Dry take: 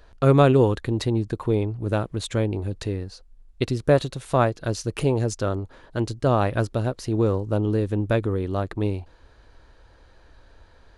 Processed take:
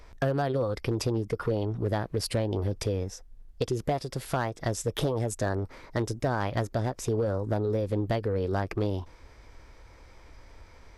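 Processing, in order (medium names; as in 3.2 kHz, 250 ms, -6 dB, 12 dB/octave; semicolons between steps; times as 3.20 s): compression 16:1, threshold -24 dBFS, peak gain reduction 14 dB; formant shift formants +4 st; overload inside the chain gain 20.5 dB; trim +1 dB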